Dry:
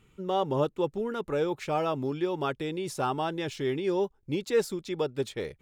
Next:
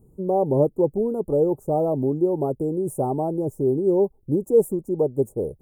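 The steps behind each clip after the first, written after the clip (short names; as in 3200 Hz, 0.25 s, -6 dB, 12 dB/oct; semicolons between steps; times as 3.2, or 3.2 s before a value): inverse Chebyshev band-stop 1900–4100 Hz, stop band 70 dB; gain +8.5 dB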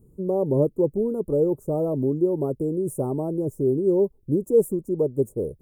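bell 780 Hz -11 dB 0.5 oct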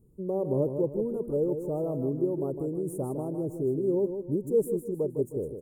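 feedback echo 0.156 s, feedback 36%, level -8 dB; gain -6.5 dB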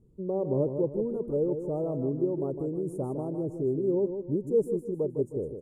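air absorption 68 m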